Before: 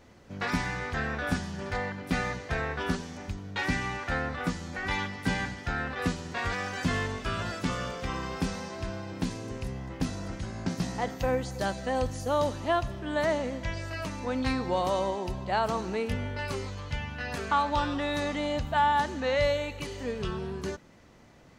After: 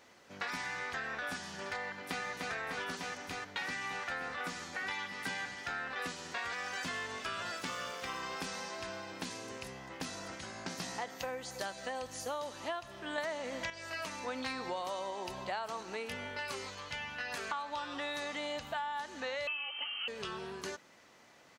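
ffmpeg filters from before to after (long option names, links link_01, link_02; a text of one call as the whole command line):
ffmpeg -i in.wav -filter_complex "[0:a]asplit=2[link_01][link_02];[link_02]afade=type=in:start_time=1.8:duration=0.01,afade=type=out:start_time=2.24:duration=0.01,aecho=0:1:300|600|900|1200|1500|1800|2100|2400|2700|3000|3300|3600:0.630957|0.536314|0.455867|0.387487|0.329364|0.279959|0.237965|0.20227|0.17193|0.14614|0.124219|0.105586[link_03];[link_01][link_03]amix=inputs=2:normalize=0,asettb=1/sr,asplit=3[link_04][link_05][link_06];[link_04]atrim=end=7.574[link_07];[link_05]atrim=start=7.57:end=8.21,asetpts=PTS-STARTPTS,afade=type=in:duration=0.004:curve=qsin,afade=type=out:start_time=0.636:duration=0.004:curve=qsin,aeval=exprs='sgn(val(0))*max(abs(val(0))-0.00316,0)':channel_layout=same[link_08];[link_06]atrim=start=8.206[link_09];[link_07][link_08]acrossfade=duration=0.004:curve1=hsin:curve2=qsin[link_10];[link_10][link_09]acrossfade=duration=0.004:curve1=qsin:curve2=hsin,asettb=1/sr,asplit=3[link_11][link_12][link_13];[link_11]atrim=end=19.474[link_14];[link_12]atrim=start=19.47:end=20.08,asetpts=PTS-STARTPTS,afade=type=in:duration=0.004:curve=qsin,afade=type=out:start_time=0.606:duration=0.004:curve=qsin,lowpass=frequency=2700:width_type=q:width=0.5098,lowpass=frequency=2700:width_type=q:width=0.6013,lowpass=frequency=2700:width_type=q:width=0.9,lowpass=frequency=2700:width_type=q:width=2.563,afreqshift=-3200[link_15];[link_13]atrim=start=20.076[link_16];[link_14][link_15]acrossfade=duration=0.004:curve1=hsin:curve2=qsin[link_17];[link_17][link_16]acrossfade=duration=0.004:curve1=qsin:curve2=hsin,asplit=5[link_18][link_19][link_20][link_21][link_22];[link_18]atrim=end=13.182[link_23];[link_19]atrim=start=13.178:end=13.702,asetpts=PTS-STARTPTS,volume=9dB[link_24];[link_20]atrim=start=13.698:end=14.282[link_25];[link_21]atrim=start=14.278:end=15.832,asetpts=PTS-STARTPTS,volume=3dB[link_26];[link_22]atrim=start=15.828[link_27];[link_23][link_24]acrossfade=duration=0.004:curve1=hsin:curve2=hsin[link_28];[link_28][link_25]acrossfade=duration=0.004:curve1=hsin:curve2=hsin[link_29];[link_29][link_26]acrossfade=duration=0.004:curve1=hsin:curve2=hsin[link_30];[link_30][link_27]acrossfade=duration=0.004:curve1=hsin:curve2=hsin,highpass=frequency=970:poles=1,acompressor=threshold=-37dB:ratio=6,volume=1.5dB" out.wav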